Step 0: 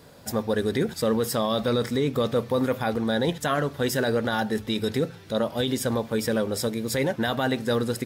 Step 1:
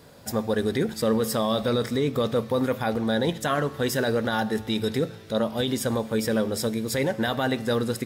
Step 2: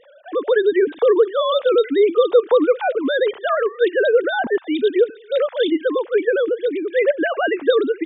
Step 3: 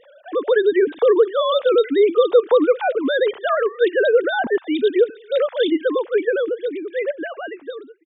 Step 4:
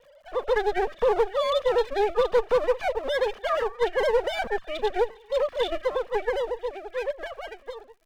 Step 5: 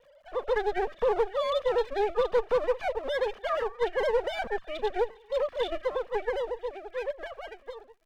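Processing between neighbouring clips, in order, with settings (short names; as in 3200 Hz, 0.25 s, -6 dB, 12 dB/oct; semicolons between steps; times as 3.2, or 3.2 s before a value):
resonator 110 Hz, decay 1.5 s, harmonics all, mix 50%; gain +5.5 dB
sine-wave speech; gain +7.5 dB
ending faded out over 2.10 s
minimum comb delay 1.7 ms; hard clip -10 dBFS, distortion -20 dB; crackle 110/s -47 dBFS; gain -5.5 dB
high shelf 5300 Hz -5.5 dB; gain -3.5 dB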